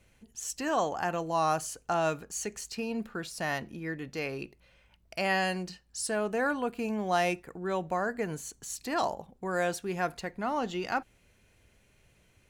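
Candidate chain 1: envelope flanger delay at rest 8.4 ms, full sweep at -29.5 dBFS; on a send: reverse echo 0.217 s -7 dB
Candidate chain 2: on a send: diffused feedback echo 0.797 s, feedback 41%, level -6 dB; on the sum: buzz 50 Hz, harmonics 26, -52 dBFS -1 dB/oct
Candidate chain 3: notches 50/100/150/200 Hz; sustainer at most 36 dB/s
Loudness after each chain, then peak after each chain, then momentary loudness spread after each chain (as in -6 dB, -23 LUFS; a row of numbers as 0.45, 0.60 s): -34.0, -31.5, -31.0 LUFS; -18.5, -14.5, -14.5 dBFS; 8, 10, 9 LU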